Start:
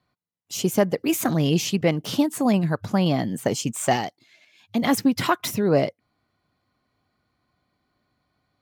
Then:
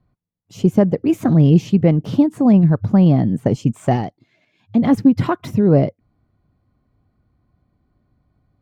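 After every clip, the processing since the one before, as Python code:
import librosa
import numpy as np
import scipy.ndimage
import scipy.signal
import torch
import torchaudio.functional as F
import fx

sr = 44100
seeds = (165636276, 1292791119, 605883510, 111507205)

y = fx.tilt_eq(x, sr, slope=-4.5)
y = y * 10.0 ** (-1.0 / 20.0)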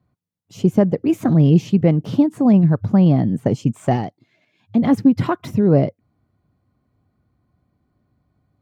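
y = scipy.signal.sosfilt(scipy.signal.butter(2, 71.0, 'highpass', fs=sr, output='sos'), x)
y = y * 10.0 ** (-1.0 / 20.0)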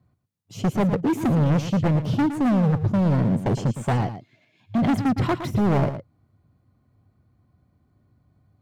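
y = fx.peak_eq(x, sr, hz=100.0, db=5.0, octaves=1.2)
y = np.clip(y, -10.0 ** (-18.0 / 20.0), 10.0 ** (-18.0 / 20.0))
y = y + 10.0 ** (-10.5 / 20.0) * np.pad(y, (int(113 * sr / 1000.0), 0))[:len(y)]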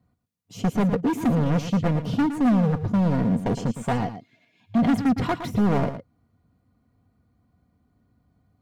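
y = x + 0.44 * np.pad(x, (int(4.2 * sr / 1000.0), 0))[:len(x)]
y = y * 10.0 ** (-1.5 / 20.0)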